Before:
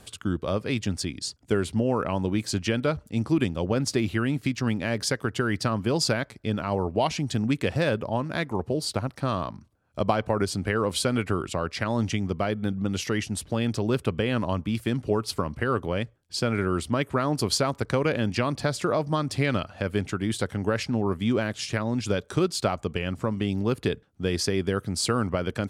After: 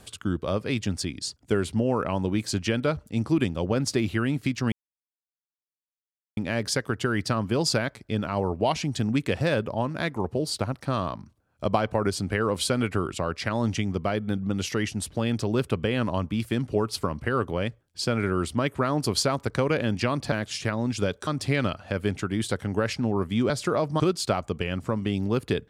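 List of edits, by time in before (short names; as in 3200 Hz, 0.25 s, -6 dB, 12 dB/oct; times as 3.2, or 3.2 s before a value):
4.72 insert silence 1.65 s
18.67–19.17 swap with 21.4–22.35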